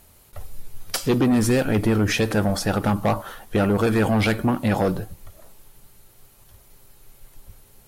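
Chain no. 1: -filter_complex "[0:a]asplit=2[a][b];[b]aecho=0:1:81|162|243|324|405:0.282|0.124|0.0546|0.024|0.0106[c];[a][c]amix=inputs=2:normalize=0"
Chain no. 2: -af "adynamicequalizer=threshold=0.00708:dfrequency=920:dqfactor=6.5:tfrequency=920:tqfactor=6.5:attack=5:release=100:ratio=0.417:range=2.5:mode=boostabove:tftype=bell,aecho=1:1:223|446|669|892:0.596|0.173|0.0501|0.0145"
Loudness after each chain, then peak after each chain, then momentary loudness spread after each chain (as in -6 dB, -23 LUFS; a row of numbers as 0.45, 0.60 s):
-21.5, -20.0 LUFS; -10.5, -8.5 dBFS; 8, 8 LU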